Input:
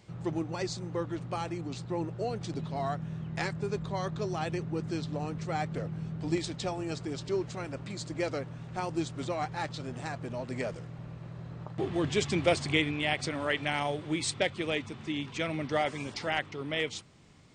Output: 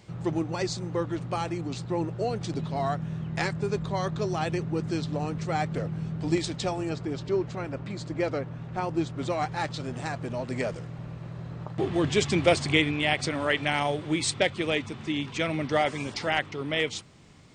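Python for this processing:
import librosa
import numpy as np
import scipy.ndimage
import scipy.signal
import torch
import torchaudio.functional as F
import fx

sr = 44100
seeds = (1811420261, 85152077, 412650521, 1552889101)

y = fx.lowpass(x, sr, hz=2400.0, slope=6, at=(6.89, 9.25))
y = y * 10.0 ** (4.5 / 20.0)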